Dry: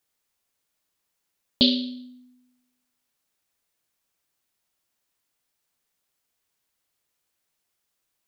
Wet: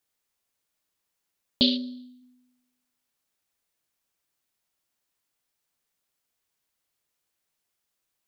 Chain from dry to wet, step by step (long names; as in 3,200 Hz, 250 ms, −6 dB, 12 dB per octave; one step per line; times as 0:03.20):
0:01.76–0:02.21: parametric band 3,400 Hz → 710 Hz −14.5 dB 1.4 octaves
level −2.5 dB